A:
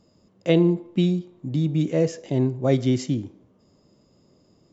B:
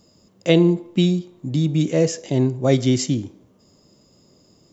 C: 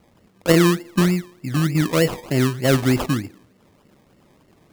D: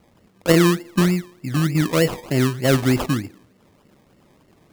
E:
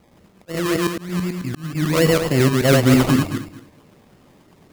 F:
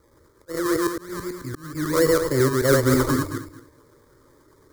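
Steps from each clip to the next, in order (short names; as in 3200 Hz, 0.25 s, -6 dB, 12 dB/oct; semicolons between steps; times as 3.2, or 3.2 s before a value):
high shelf 4500 Hz +12 dB; gain +3 dB
decimation with a swept rate 25×, swing 60% 3.3 Hz
nothing audible
regenerating reverse delay 0.109 s, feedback 41%, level -1.5 dB; auto swell 0.515 s; gain +1.5 dB
fixed phaser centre 730 Hz, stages 6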